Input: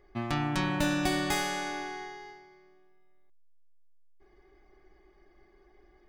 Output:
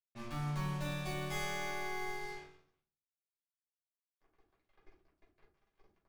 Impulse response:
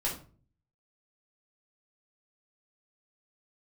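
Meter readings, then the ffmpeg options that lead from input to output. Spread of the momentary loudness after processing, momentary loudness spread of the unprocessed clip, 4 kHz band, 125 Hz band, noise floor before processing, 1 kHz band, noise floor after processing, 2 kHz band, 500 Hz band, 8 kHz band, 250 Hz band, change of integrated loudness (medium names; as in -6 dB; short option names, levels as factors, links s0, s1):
8 LU, 15 LU, -10.0 dB, -4.0 dB, -62 dBFS, -8.5 dB, under -85 dBFS, -7.5 dB, -7.5 dB, -9.5 dB, -12.0 dB, -8.5 dB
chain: -filter_complex "[0:a]areverse,acompressor=threshold=0.0112:ratio=5,areverse,acrusher=bits=7:mix=0:aa=0.5[s0];[1:a]atrim=start_sample=2205,asetrate=52920,aresample=44100[s1];[s0][s1]afir=irnorm=-1:irlink=0,volume=0.668"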